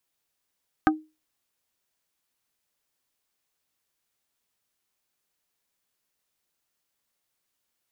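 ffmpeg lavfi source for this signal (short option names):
-f lavfi -i "aevalsrc='0.188*pow(10,-3*t/0.27)*sin(2*PI*311*t)+0.178*pow(10,-3*t/0.09)*sin(2*PI*777.5*t)+0.168*pow(10,-3*t/0.051)*sin(2*PI*1244*t)+0.158*pow(10,-3*t/0.039)*sin(2*PI*1555*t)':d=0.45:s=44100"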